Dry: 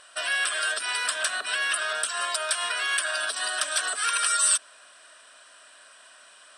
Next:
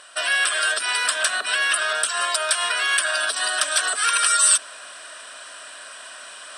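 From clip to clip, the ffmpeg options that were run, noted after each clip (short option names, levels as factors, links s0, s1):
-af "highpass=120,areverse,acompressor=mode=upward:threshold=0.0158:ratio=2.5,areverse,volume=1.88"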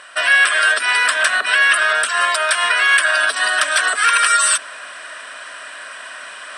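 -af "equalizer=f=125:t=o:w=1:g=7,equalizer=f=250:t=o:w=1:g=5,equalizer=f=500:t=o:w=1:g=4,equalizer=f=1000:t=o:w=1:g=5,equalizer=f=2000:t=o:w=1:g=11,volume=0.891"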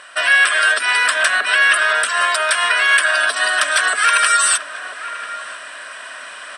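-filter_complex "[0:a]asplit=2[s0][s1];[s1]adelay=991.3,volume=0.282,highshelf=f=4000:g=-22.3[s2];[s0][s2]amix=inputs=2:normalize=0"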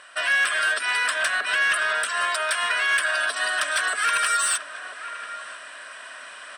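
-af "asoftclip=type=tanh:threshold=0.501,volume=0.447"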